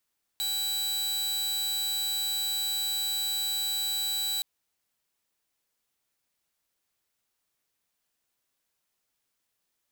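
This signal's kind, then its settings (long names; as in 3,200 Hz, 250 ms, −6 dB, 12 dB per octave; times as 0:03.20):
tone saw 3,940 Hz −25 dBFS 4.02 s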